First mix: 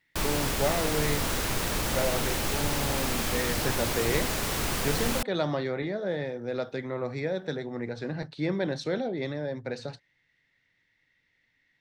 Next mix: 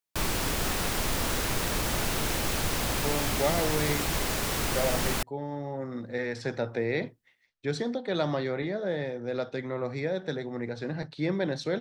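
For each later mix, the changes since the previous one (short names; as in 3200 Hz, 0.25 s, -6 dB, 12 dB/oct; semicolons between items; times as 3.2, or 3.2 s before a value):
speech: entry +2.80 s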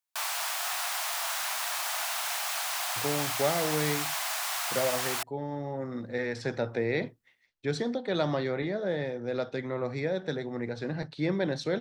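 background: add Chebyshev high-pass 680 Hz, order 5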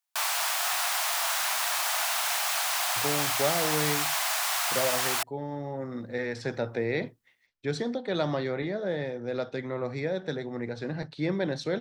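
background +4.0 dB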